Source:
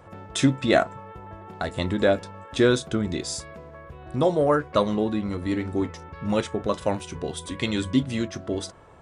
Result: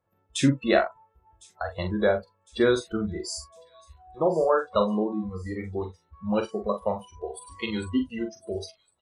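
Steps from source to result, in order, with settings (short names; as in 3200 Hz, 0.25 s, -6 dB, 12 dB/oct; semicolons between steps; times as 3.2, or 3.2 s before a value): spectral noise reduction 28 dB; doubler 43 ms -7.5 dB; on a send: thin delay 1.056 s, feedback 50%, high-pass 5400 Hz, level -17 dB; on the sum: gain -2 dB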